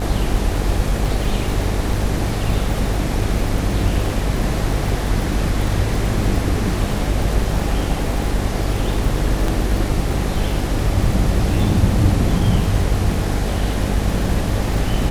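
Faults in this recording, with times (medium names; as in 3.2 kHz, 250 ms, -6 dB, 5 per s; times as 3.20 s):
buzz 50 Hz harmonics 16 -22 dBFS
crackle 110 per s -26 dBFS
9.48 s: dropout 3 ms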